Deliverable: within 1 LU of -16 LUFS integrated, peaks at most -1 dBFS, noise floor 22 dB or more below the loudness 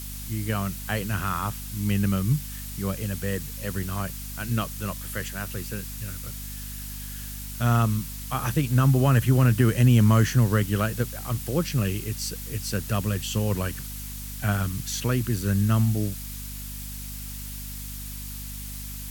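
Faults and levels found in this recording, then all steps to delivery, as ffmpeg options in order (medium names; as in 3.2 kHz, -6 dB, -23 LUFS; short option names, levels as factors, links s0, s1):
hum 50 Hz; highest harmonic 250 Hz; hum level -35 dBFS; noise floor -36 dBFS; noise floor target -49 dBFS; loudness -26.5 LUFS; peak level -8.5 dBFS; loudness target -16.0 LUFS
-> -af "bandreject=f=50:t=h:w=6,bandreject=f=100:t=h:w=6,bandreject=f=150:t=h:w=6,bandreject=f=200:t=h:w=6,bandreject=f=250:t=h:w=6"
-af "afftdn=nr=13:nf=-36"
-af "volume=3.35,alimiter=limit=0.891:level=0:latency=1"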